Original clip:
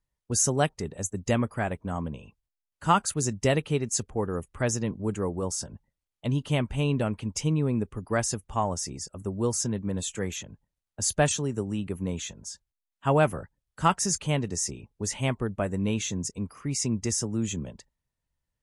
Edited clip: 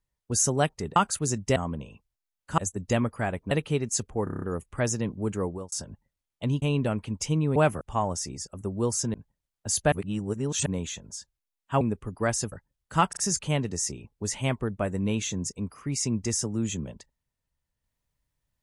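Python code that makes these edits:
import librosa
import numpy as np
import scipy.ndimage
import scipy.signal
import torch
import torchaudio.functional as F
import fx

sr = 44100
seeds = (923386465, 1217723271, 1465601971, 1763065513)

y = fx.edit(x, sr, fx.swap(start_s=0.96, length_s=0.93, other_s=2.91, other_length_s=0.6),
    fx.stutter(start_s=4.24, slice_s=0.03, count=7),
    fx.fade_out_span(start_s=5.29, length_s=0.25),
    fx.cut(start_s=6.44, length_s=0.33),
    fx.swap(start_s=7.71, length_s=0.71, other_s=13.14, other_length_s=0.25),
    fx.cut(start_s=9.75, length_s=0.72),
    fx.reverse_span(start_s=11.25, length_s=0.74),
    fx.stutter(start_s=13.96, slice_s=0.04, count=3), tone=tone)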